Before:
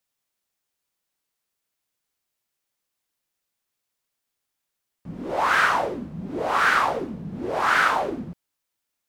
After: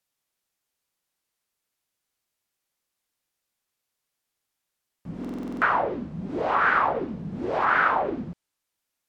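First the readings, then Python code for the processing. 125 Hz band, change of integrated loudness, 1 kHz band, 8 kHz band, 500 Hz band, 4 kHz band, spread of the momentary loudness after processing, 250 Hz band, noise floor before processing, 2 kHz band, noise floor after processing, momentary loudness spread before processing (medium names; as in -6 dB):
0.0 dB, -2.5 dB, -1.5 dB, under -20 dB, -0.5 dB, -11.5 dB, 15 LU, +0.5 dB, -82 dBFS, -3.0 dB, -83 dBFS, 16 LU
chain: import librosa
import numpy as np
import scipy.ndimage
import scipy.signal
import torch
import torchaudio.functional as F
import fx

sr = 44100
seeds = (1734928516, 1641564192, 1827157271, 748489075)

y = fx.env_lowpass_down(x, sr, base_hz=1800.0, full_db=-19.0)
y = fx.buffer_glitch(y, sr, at_s=(5.2,), block=2048, repeats=8)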